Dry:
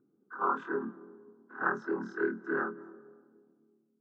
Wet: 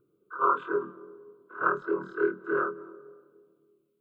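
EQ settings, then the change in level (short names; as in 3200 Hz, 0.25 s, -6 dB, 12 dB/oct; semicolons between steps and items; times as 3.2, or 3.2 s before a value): low shelf 71 Hz +7.5 dB; fixed phaser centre 1200 Hz, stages 8; +7.0 dB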